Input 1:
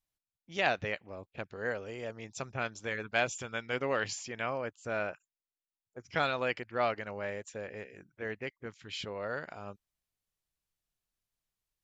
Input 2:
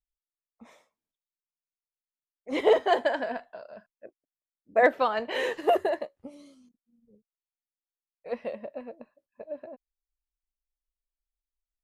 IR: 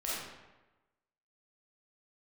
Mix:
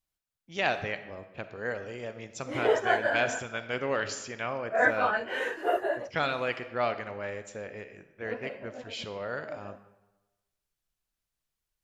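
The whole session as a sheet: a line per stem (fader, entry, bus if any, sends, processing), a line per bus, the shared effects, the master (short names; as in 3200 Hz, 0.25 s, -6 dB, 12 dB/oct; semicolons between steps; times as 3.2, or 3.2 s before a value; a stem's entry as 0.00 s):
0.0 dB, 0.00 s, send -13 dB, dry
-4.0 dB, 0.00 s, no send, phase scrambler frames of 0.1 s; bell 1500 Hz +14.5 dB 0.28 oct; notch 4000 Hz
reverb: on, RT60 1.1 s, pre-delay 5 ms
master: dry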